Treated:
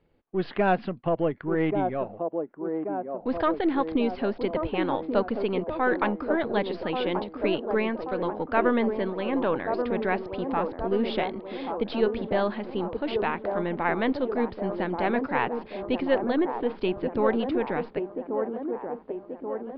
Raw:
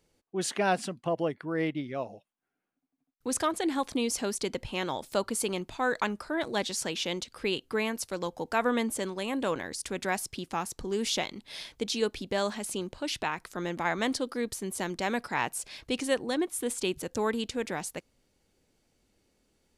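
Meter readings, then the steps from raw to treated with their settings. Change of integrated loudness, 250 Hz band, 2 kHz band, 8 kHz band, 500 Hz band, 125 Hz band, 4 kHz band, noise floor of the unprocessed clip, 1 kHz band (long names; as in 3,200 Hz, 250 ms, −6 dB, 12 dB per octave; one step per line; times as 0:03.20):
+4.0 dB, +6.0 dB, +1.5 dB, below −40 dB, +6.5 dB, +5.0 dB, −5.5 dB, −79 dBFS, +5.0 dB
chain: gain on one half-wave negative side −3 dB
high-frequency loss of the air 460 metres
on a send: delay with a band-pass on its return 1,133 ms, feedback 61%, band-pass 500 Hz, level −4 dB
on the sum: downsampling to 11,025 Hz
level +7 dB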